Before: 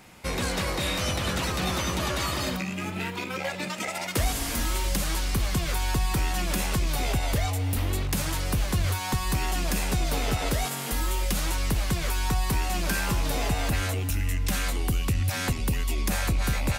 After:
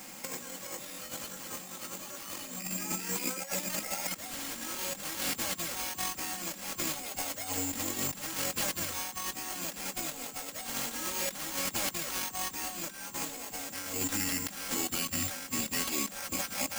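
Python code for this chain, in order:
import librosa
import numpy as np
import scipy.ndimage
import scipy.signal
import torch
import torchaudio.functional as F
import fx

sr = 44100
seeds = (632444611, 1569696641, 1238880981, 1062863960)

y = scipy.signal.sosfilt(scipy.signal.butter(4, 140.0, 'highpass', fs=sr, output='sos'), x)
y = (np.kron(y[::6], np.eye(6)[0]) * 6)[:len(y)]
y = fx.high_shelf(y, sr, hz=7700.0, db=-7.5)
y = fx.notch(y, sr, hz=3700.0, q=23.0)
y = y + 0.42 * np.pad(y, (int(3.7 * sr / 1000.0), 0))[:len(y)]
y = fx.over_compress(y, sr, threshold_db=-31.0, ratio=-0.5)
y = y * librosa.db_to_amplitude(-4.5)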